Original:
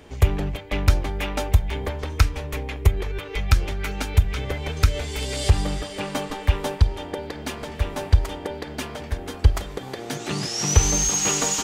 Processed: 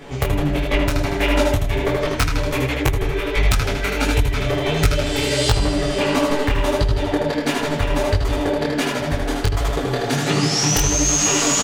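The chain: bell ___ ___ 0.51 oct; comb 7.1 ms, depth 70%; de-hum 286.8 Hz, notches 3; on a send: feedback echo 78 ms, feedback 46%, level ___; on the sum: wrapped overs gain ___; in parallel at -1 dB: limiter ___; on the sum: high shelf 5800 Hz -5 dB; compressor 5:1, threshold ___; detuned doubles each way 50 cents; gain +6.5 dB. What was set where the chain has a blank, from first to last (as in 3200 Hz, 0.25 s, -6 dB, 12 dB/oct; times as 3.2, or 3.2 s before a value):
82 Hz, -4 dB, -4 dB, 6 dB, -13.5 dBFS, -17 dBFS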